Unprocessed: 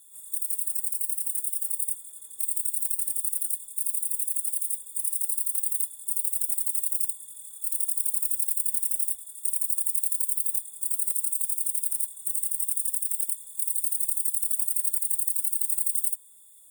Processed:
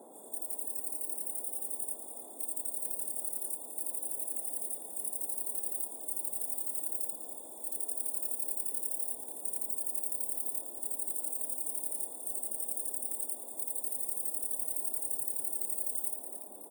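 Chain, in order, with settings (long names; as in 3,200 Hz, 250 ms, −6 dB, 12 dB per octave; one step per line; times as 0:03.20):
spectral magnitudes quantised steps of 15 dB
echo with shifted repeats 284 ms, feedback 50%, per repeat +98 Hz, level −9 dB
noise in a band 230–810 Hz −46 dBFS
level −8.5 dB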